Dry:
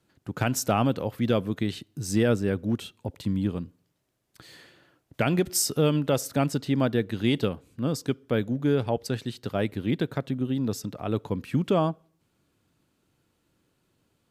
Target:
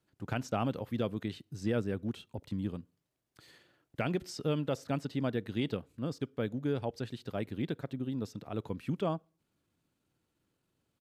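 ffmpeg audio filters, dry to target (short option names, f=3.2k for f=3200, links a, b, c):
-filter_complex "[0:a]atempo=1.3,acrossover=split=5100[a][b];[b]acompressor=threshold=-52dB:ratio=4:attack=1:release=60[c];[a][c]amix=inputs=2:normalize=0,volume=-8.5dB"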